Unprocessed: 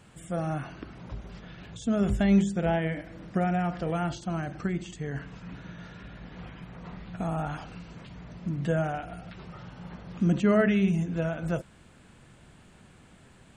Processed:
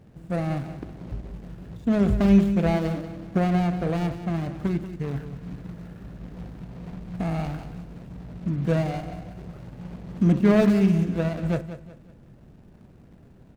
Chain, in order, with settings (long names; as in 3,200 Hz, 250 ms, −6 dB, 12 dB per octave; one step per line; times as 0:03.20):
running median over 41 samples
on a send: repeating echo 185 ms, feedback 35%, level −12 dB
on the sum: level +5 dB